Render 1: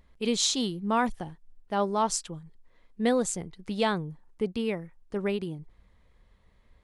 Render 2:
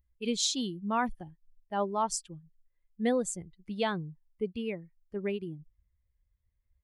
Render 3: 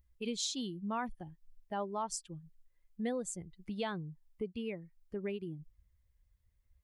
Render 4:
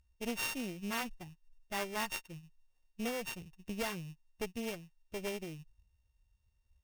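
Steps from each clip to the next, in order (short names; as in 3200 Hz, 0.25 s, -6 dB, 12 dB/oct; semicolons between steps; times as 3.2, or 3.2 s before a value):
per-bin expansion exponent 1.5; gain -2 dB
compressor 2:1, threshold -46 dBFS, peak gain reduction 12.5 dB; gain +3.5 dB
sample sorter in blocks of 16 samples; careless resampling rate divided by 3×, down none, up hold; added harmonics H 6 -15 dB, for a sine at -21.5 dBFS; gain -1 dB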